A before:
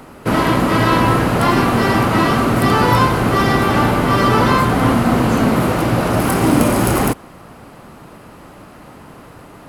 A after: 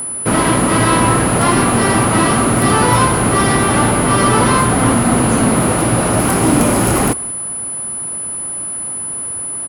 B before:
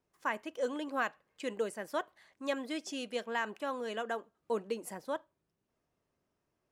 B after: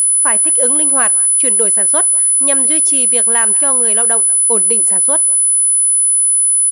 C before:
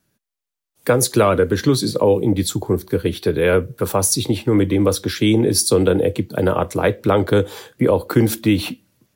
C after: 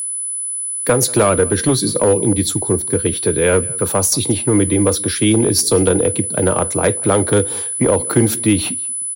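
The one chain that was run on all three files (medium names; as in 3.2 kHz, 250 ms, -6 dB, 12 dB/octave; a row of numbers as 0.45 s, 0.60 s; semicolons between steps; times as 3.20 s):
echo from a far wall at 32 m, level -23 dB; one-sided clip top -10 dBFS; whistle 10 kHz -22 dBFS; peak normalisation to -1.5 dBFS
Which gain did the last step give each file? +1.5 dB, +13.0 dB, +1.5 dB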